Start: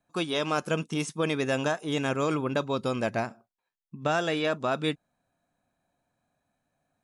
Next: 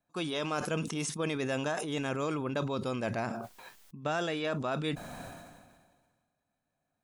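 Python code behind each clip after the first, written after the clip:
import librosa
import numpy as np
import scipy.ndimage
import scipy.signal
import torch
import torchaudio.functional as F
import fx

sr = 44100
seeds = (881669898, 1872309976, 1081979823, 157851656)

y = fx.sustainer(x, sr, db_per_s=36.0)
y = y * 10.0 ** (-6.0 / 20.0)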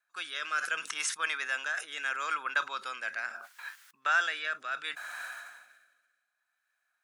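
y = fx.highpass_res(x, sr, hz=1500.0, q=3.7)
y = fx.rotary(y, sr, hz=0.7)
y = y * 10.0 ** (4.0 / 20.0)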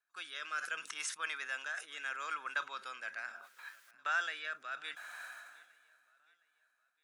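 y = fx.echo_feedback(x, sr, ms=712, feedback_pct=40, wet_db=-23)
y = y * 10.0 ** (-7.0 / 20.0)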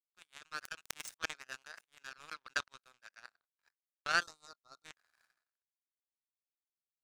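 y = fx.power_curve(x, sr, exponent=3.0)
y = fx.spec_box(y, sr, start_s=4.23, length_s=0.62, low_hz=1400.0, high_hz=3600.0, gain_db=-19)
y = y * 10.0 ** (11.5 / 20.0)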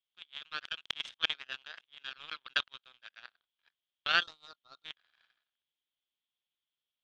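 y = fx.lowpass_res(x, sr, hz=3300.0, q=7.8)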